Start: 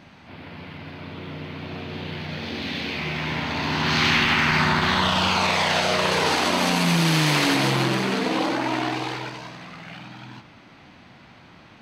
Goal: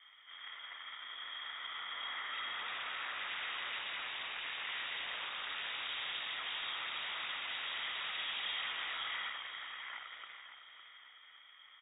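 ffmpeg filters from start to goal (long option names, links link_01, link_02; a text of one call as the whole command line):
ffmpeg -i in.wav -filter_complex "[0:a]highpass=280,tiltshelf=frequency=970:gain=-9.5,alimiter=limit=-12.5dB:level=0:latency=1,asplit=3[link_01][link_02][link_03];[link_01]bandpass=frequency=530:width_type=q:width=8,volume=0dB[link_04];[link_02]bandpass=frequency=1840:width_type=q:width=8,volume=-6dB[link_05];[link_03]bandpass=frequency=2480:width_type=q:width=8,volume=-9dB[link_06];[link_04][link_05][link_06]amix=inputs=3:normalize=0,aeval=exprs='0.02*sin(PI/2*1.58*val(0)/0.02)':channel_layout=same,adynamicsmooth=sensitivity=5:basefreq=870,asplit=2[link_07][link_08];[link_08]aecho=0:1:558|1116|1674|2232:0.316|0.13|0.0532|0.0218[link_09];[link_07][link_09]amix=inputs=2:normalize=0,lowpass=frequency=3200:width_type=q:width=0.5098,lowpass=frequency=3200:width_type=q:width=0.6013,lowpass=frequency=3200:width_type=q:width=0.9,lowpass=frequency=3200:width_type=q:width=2.563,afreqshift=-3800,volume=1.5dB" out.wav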